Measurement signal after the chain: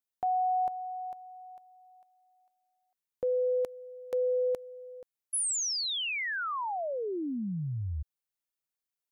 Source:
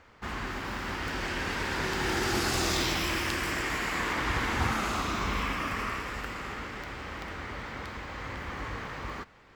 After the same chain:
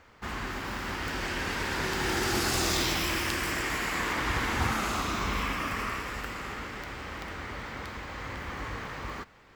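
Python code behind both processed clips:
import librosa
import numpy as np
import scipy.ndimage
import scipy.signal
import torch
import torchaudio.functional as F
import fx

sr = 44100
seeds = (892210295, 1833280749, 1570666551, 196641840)

y = fx.high_shelf(x, sr, hz=8300.0, db=6.0)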